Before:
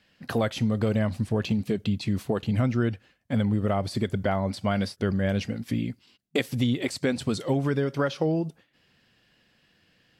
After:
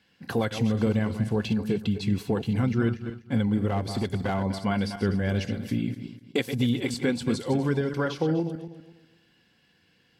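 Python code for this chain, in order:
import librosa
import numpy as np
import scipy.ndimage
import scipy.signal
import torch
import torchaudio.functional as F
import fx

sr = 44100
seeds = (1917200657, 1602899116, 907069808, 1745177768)

y = fx.reverse_delay_fb(x, sr, ms=124, feedback_pct=49, wet_db=-9.0)
y = fx.notch_comb(y, sr, f0_hz=620.0)
y = fx.overload_stage(y, sr, gain_db=21.5, at=(3.68, 4.44))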